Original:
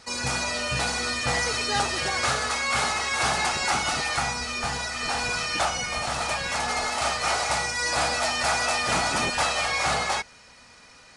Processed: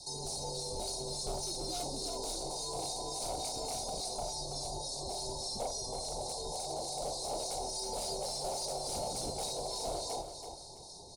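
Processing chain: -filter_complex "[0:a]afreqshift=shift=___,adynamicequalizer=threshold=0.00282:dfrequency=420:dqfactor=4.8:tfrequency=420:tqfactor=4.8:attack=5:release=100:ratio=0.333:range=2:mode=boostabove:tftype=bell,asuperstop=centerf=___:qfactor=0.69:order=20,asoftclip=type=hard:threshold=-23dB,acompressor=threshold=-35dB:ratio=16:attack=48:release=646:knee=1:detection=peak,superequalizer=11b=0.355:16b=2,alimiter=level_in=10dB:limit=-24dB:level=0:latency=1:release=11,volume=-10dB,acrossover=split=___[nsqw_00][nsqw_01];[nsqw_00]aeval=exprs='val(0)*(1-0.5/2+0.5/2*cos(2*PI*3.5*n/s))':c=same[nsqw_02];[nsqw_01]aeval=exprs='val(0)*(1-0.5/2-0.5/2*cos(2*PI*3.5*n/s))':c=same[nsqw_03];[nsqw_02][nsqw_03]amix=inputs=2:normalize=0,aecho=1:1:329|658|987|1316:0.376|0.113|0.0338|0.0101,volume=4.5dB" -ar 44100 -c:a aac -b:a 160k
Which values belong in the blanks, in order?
-100, 1900, 1500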